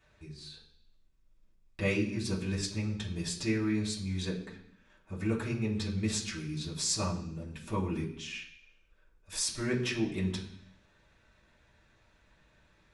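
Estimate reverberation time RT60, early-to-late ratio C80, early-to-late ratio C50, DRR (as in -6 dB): 0.65 s, 11.0 dB, 8.0 dB, -7.0 dB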